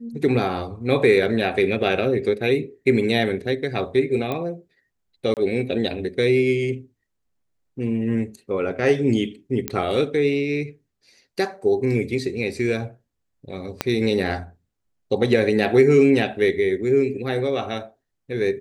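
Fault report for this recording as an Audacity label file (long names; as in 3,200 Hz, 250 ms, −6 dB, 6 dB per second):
4.320000	4.320000	click −14 dBFS
5.340000	5.370000	drop-out 28 ms
9.680000	9.680000	click −7 dBFS
13.810000	13.810000	click −6 dBFS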